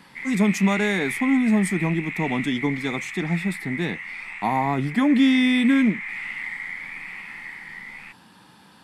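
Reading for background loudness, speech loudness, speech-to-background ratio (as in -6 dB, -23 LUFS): -31.0 LUFS, -22.5 LUFS, 8.5 dB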